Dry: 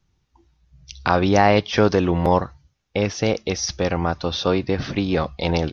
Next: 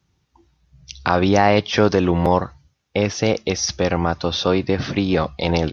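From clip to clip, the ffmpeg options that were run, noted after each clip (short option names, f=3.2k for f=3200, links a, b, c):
-filter_complex "[0:a]asplit=2[a][b];[b]alimiter=limit=-11.5dB:level=0:latency=1:release=113,volume=-1dB[c];[a][c]amix=inputs=2:normalize=0,highpass=69,volume=-2.5dB"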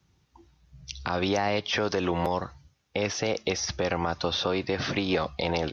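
-filter_complex "[0:a]acrossover=split=420|2900[a][b][c];[a]acompressor=threshold=-30dB:ratio=4[d];[b]acompressor=threshold=-24dB:ratio=4[e];[c]acompressor=threshold=-33dB:ratio=4[f];[d][e][f]amix=inputs=3:normalize=0,alimiter=limit=-15.5dB:level=0:latency=1:release=101"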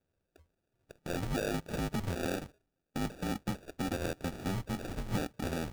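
-af "highpass=f=280:t=q:w=0.5412,highpass=f=280:t=q:w=1.307,lowpass=f=2.9k:t=q:w=0.5176,lowpass=f=2.9k:t=q:w=0.7071,lowpass=f=2.9k:t=q:w=1.932,afreqshift=-260,acrusher=samples=42:mix=1:aa=0.000001,volume=-6dB"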